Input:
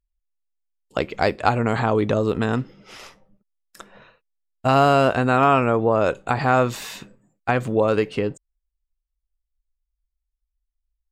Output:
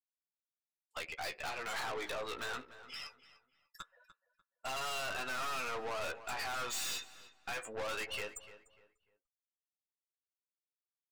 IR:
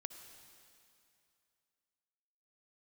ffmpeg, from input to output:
-filter_complex "[0:a]highpass=490,afftdn=nr=35:nf=-40,aderivative,alimiter=level_in=1.5:limit=0.0631:level=0:latency=1:release=197,volume=0.668,flanger=delay=8:depth=9:regen=22:speed=0.22:shape=triangular,aeval=exprs='(tanh(501*val(0)+0.4)-tanh(0.4))/501':c=same,asplit=2[s0][s1];[s1]adelay=296,lowpass=f=2900:p=1,volume=0.2,asplit=2[s2][s3];[s3]adelay=296,lowpass=f=2900:p=1,volume=0.31,asplit=2[s4][s5];[s5]adelay=296,lowpass=f=2900:p=1,volume=0.31[s6];[s2][s4][s6]amix=inputs=3:normalize=0[s7];[s0][s7]amix=inputs=2:normalize=0,volume=7.08"

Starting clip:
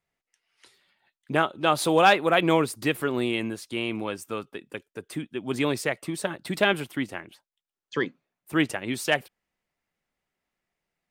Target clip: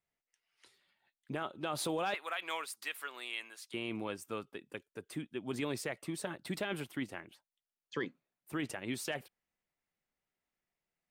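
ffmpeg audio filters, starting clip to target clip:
-filter_complex "[0:a]asettb=1/sr,asplit=3[s0][s1][s2];[s0]atrim=end=2.144[s3];[s1]atrim=start=2.14:end=3.74,asetpts=PTS-STARTPTS,afade=t=in:d=0.004:c=qsin,afade=t=out:st=1.596:d=0.004:c=qsin,highpass=1200[s4];[s2]atrim=start=3.736[s5];[s3][s4]acrossfade=d=0.004:c1=hsin:c2=qsin[s6];[s6][s5]acrossfade=d=0.004:c1=qsin:c2=hsin,alimiter=limit=0.126:level=0:latency=1:release=19,volume=0.398"

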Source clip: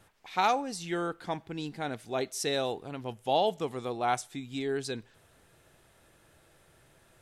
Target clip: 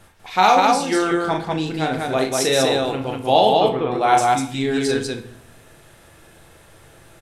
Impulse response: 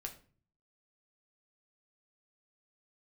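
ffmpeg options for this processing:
-filter_complex "[0:a]asettb=1/sr,asplit=3[s0][s1][s2];[s0]atrim=end=3.494[s3];[s1]atrim=start=3.49:end=3.92,asetpts=PTS-STARTPTS,afade=t=in:d=0.004:c=qsin,afade=t=out:st=0.426:d=0.004:c=qsin,lowpass=f=3000:w=0.5412,lowpass=f=3000:w=1.3066[s4];[s2]atrim=start=3.916[s5];[s3][s4]acrossfade=d=0.004:c1=hsin:c2=qsin[s6];[s6][s5]acrossfade=d=0.004:c1=qsin:c2=hsin,aecho=1:1:37.9|195.3:0.562|0.794,asplit=2[s7][s8];[1:a]atrim=start_sample=2205,asetrate=27342,aresample=44100[s9];[s8][s9]afir=irnorm=-1:irlink=0,volume=1.78[s10];[s7][s10]amix=inputs=2:normalize=0,volume=1.26"

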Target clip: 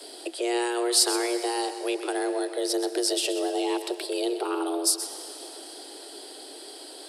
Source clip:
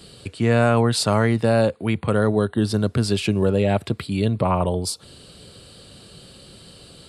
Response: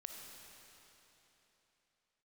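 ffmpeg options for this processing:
-filter_complex "[0:a]afreqshift=240,acrossover=split=290|3000[s0][s1][s2];[s1]acompressor=threshold=0.0224:ratio=4[s3];[s0][s3][s2]amix=inputs=3:normalize=0,asplit=2[s4][s5];[1:a]atrim=start_sample=2205,adelay=127[s6];[s5][s6]afir=irnorm=-1:irlink=0,volume=0.531[s7];[s4][s7]amix=inputs=2:normalize=0,crystalizer=i=1:c=0"

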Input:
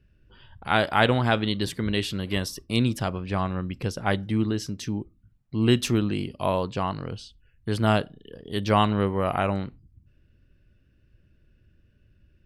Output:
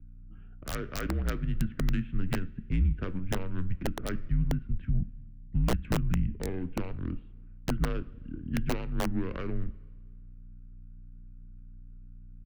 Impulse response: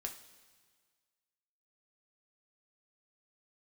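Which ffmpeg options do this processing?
-filter_complex "[0:a]highpass=f=240:t=q:w=0.5412,highpass=f=240:t=q:w=1.307,lowpass=f=3200:t=q:w=0.5176,lowpass=f=3200:t=q:w=0.7071,lowpass=f=3200:t=q:w=1.932,afreqshift=-150,acompressor=threshold=0.0282:ratio=6,aeval=exprs='val(0)+0.00141*(sin(2*PI*60*n/s)+sin(2*PI*2*60*n/s)/2+sin(2*PI*3*60*n/s)/3+sin(2*PI*4*60*n/s)/4+sin(2*PI*5*60*n/s)/5)':c=same,adynamicsmooth=sensitivity=1:basefreq=640,firequalizer=gain_entry='entry(270,0);entry(840,-16);entry(1500,4)':delay=0.05:min_phase=1,asplit=2[s0][s1];[1:a]atrim=start_sample=2205,lowpass=5300[s2];[s1][s2]afir=irnorm=-1:irlink=0,volume=0.708[s3];[s0][s3]amix=inputs=2:normalize=0,aeval=exprs='(mod(14.1*val(0)+1,2)-1)/14.1':c=same,afreqshift=-28,lowshelf=f=130:g=10"

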